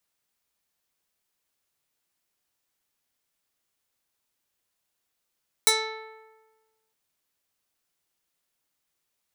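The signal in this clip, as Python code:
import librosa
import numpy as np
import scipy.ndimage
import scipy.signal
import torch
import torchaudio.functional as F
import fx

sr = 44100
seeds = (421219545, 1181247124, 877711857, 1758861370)

y = fx.pluck(sr, length_s=1.26, note=69, decay_s=1.31, pick=0.27, brightness='medium')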